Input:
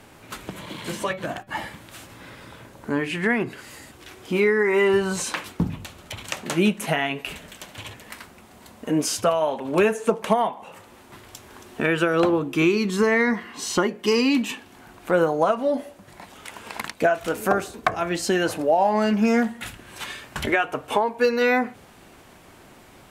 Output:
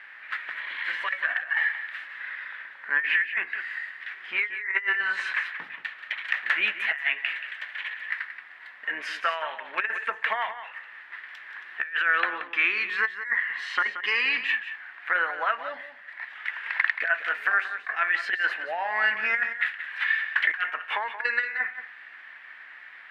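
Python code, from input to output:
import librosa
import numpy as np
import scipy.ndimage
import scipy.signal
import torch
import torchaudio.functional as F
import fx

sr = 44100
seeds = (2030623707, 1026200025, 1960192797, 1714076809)

p1 = fx.octave_divider(x, sr, octaves=2, level_db=-1.0)
p2 = fx.add_hum(p1, sr, base_hz=60, snr_db=22)
p3 = fx.highpass_res(p2, sr, hz=1800.0, q=7.0)
p4 = fx.air_absorb(p3, sr, metres=410.0)
p5 = fx.over_compress(p4, sr, threshold_db=-24.0, ratio=-0.5)
p6 = fx.high_shelf(p5, sr, hz=8900.0, db=-4.0)
y = p6 + fx.echo_single(p6, sr, ms=179, db=-11.0, dry=0)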